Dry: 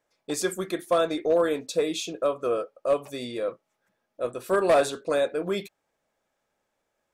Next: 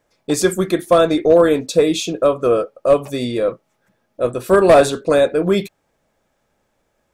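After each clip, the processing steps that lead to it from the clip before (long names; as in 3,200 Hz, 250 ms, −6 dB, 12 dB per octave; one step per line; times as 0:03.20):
low-shelf EQ 250 Hz +10.5 dB
level +8.5 dB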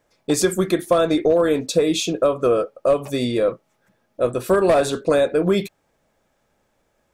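downward compressor 6 to 1, threshold −13 dBFS, peak gain reduction 7.5 dB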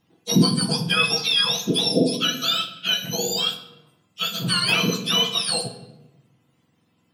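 frequency axis turned over on the octave scale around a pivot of 1,300 Hz
on a send at −6.5 dB: convolution reverb RT60 1.0 s, pre-delay 6 ms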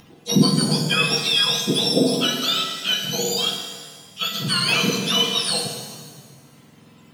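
upward compression, threshold −37 dBFS
reverb with rising layers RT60 1.5 s, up +7 semitones, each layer −8 dB, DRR 5.5 dB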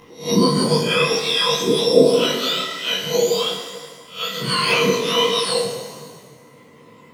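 peak hold with a rise ahead of every peak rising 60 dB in 0.35 s
hollow resonant body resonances 490/1,000/2,000 Hz, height 14 dB, ringing for 20 ms
micro pitch shift up and down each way 45 cents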